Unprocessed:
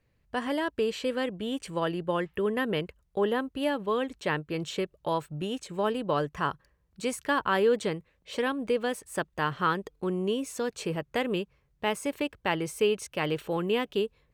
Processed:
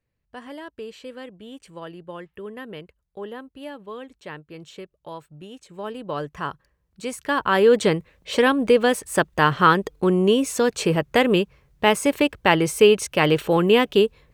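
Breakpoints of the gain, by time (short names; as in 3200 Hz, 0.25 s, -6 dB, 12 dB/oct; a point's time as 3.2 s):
5.53 s -8 dB
6.27 s 0 dB
7.03 s 0 dB
7.88 s +11 dB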